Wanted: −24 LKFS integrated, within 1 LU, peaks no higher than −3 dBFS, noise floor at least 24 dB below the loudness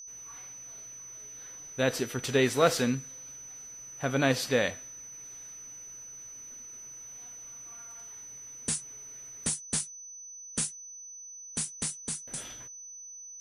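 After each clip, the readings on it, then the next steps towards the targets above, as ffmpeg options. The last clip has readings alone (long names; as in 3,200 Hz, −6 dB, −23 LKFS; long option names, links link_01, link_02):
interfering tone 6,000 Hz; level of the tone −43 dBFS; integrated loudness −33.5 LKFS; sample peak −10.0 dBFS; target loudness −24.0 LKFS
→ -af "bandreject=frequency=6000:width=30"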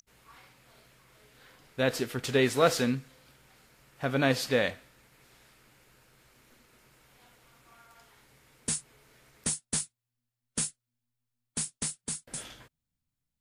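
interfering tone none found; integrated loudness −30.5 LKFS; sample peak −10.0 dBFS; target loudness −24.0 LKFS
→ -af "volume=6.5dB"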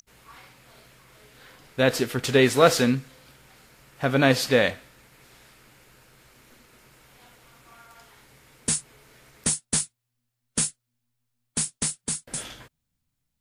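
integrated loudness −24.0 LKFS; sample peak −3.5 dBFS; background noise floor −80 dBFS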